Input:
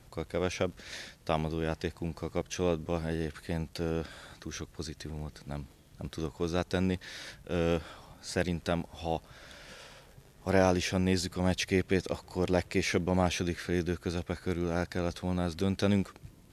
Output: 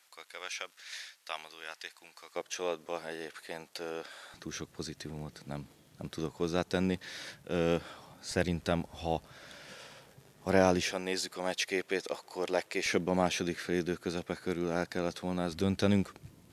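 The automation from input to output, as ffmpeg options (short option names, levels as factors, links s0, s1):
-af "asetnsamples=n=441:p=0,asendcmd='2.36 highpass f 540;4.34 highpass f 130;8.31 highpass f 60;9.28 highpass f 120;10.91 highpass f 430;12.86 highpass f 180;15.52 highpass f 81',highpass=1400"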